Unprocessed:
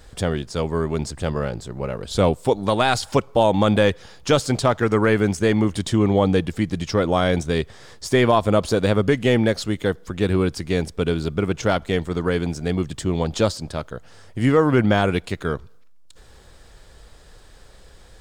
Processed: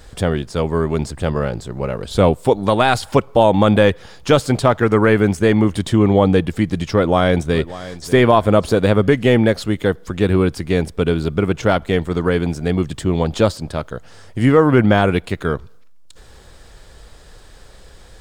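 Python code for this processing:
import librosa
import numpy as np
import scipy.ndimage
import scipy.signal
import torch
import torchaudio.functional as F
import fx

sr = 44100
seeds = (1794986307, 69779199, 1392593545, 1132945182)

y = fx.echo_throw(x, sr, start_s=6.91, length_s=1.17, ms=590, feedback_pct=35, wet_db=-16.5)
y = fx.dynamic_eq(y, sr, hz=6000.0, q=0.96, threshold_db=-45.0, ratio=4.0, max_db=-7)
y = F.gain(torch.from_numpy(y), 4.5).numpy()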